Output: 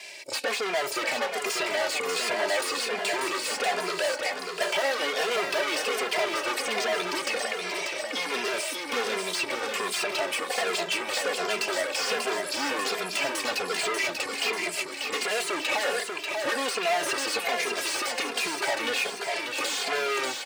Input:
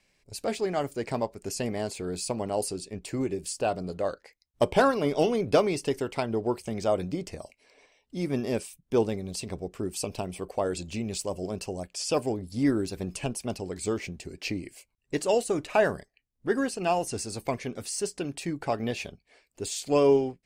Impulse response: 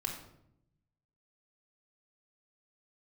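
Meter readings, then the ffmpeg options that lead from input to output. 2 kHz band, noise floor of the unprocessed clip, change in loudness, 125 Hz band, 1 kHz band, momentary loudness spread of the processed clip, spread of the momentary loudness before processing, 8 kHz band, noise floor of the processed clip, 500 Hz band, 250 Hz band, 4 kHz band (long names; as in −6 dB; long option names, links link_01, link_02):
+11.5 dB, −75 dBFS, +2.0 dB, −18.5 dB, +3.5 dB, 3 LU, 11 LU, +4.5 dB, −36 dBFS, −2.0 dB, −8.5 dB, +11.5 dB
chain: -filter_complex "[0:a]acontrast=84,equalizer=frequency=1300:width_type=o:width=0.88:gain=-12.5,asplit=2[link_01][link_02];[link_02]highpass=frequency=720:poles=1,volume=36dB,asoftclip=type=tanh:threshold=-5dB[link_03];[link_01][link_03]amix=inputs=2:normalize=0,lowpass=frequency=2700:poles=1,volume=-6dB,acrossover=split=1300|3500[link_04][link_05][link_06];[link_04]acompressor=threshold=-25dB:ratio=4[link_07];[link_05]acompressor=threshold=-28dB:ratio=4[link_08];[link_06]acompressor=threshold=-36dB:ratio=4[link_09];[link_07][link_08][link_09]amix=inputs=3:normalize=0,highpass=570,highshelf=frequency=8300:gain=3.5,aecho=1:1:590|1180|1770|2360|2950|3540|4130|4720:0.562|0.326|0.189|0.11|0.0636|0.0369|0.0214|0.0124,asplit=2[link_10][link_11];[link_11]adelay=2.5,afreqshift=-1.3[link_12];[link_10][link_12]amix=inputs=2:normalize=1"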